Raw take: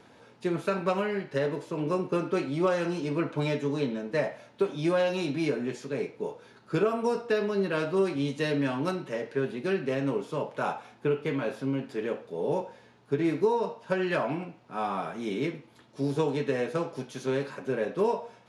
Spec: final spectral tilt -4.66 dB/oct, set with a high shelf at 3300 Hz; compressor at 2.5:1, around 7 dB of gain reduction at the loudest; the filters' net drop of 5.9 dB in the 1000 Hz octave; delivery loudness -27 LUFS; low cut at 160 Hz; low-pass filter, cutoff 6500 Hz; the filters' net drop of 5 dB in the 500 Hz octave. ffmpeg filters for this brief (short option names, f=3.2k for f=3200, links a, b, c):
-af "highpass=160,lowpass=6.5k,equalizer=f=500:t=o:g=-5,equalizer=f=1k:t=o:g=-6.5,highshelf=f=3.3k:g=4,acompressor=threshold=-35dB:ratio=2.5,volume=11dB"